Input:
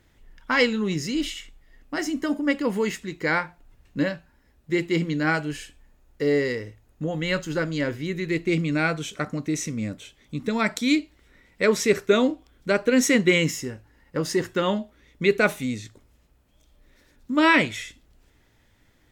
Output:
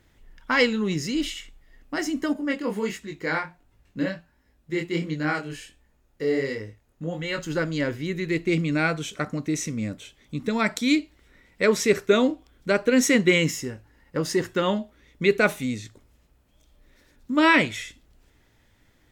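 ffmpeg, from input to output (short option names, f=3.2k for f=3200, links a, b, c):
-filter_complex "[0:a]asettb=1/sr,asplit=3[a][b][c];[a]atrim=end=2.334[d];[b]atrim=start=2.33:end=7.39,asetpts=PTS-STARTPTS,afade=t=in:d=0.004:c=qsin,afade=t=out:st=5.056:d=0.004:c=qsin,flanger=delay=19:depth=6.4:speed=1.4[e];[c]atrim=start=7.386[f];[d][e]acrossfade=d=0.004:c1=hsin:c2=qsin[g];[g][f]acrossfade=d=0.004:c1=qsin:c2=hsin"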